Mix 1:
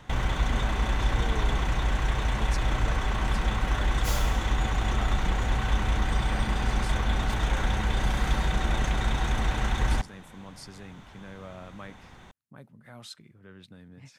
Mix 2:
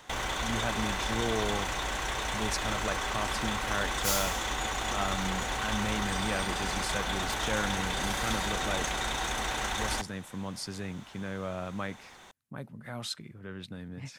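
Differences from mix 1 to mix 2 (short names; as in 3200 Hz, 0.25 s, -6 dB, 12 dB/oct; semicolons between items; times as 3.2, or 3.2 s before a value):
speech +7.5 dB; background: add tone controls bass -14 dB, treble +8 dB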